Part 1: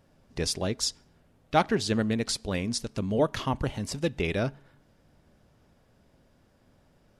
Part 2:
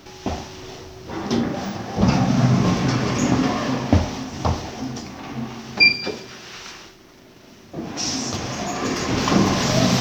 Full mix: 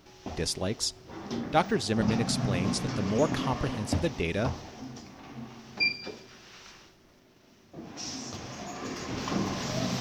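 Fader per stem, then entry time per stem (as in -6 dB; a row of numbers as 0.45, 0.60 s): -1.5, -13.0 dB; 0.00, 0.00 s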